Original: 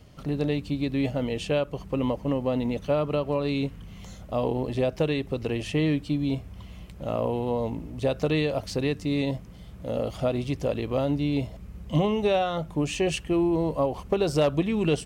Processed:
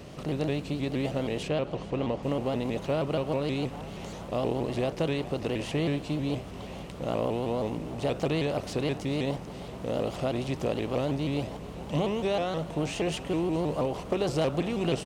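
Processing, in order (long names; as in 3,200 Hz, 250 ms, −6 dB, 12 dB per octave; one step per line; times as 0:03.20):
compressor on every frequency bin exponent 0.6
0:01.48–0:02.23: high-frequency loss of the air 89 metres
on a send: echo with shifted repeats 422 ms, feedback 65%, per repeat +120 Hz, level −18 dB
on the sum: pitch modulation by a square or saw wave saw up 6.3 Hz, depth 160 cents
level −7 dB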